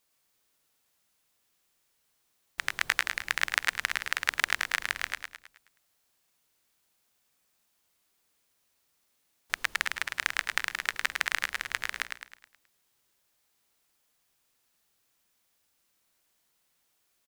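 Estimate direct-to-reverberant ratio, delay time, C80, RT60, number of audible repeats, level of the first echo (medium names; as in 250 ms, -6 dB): no reverb, 106 ms, no reverb, no reverb, 5, -5.5 dB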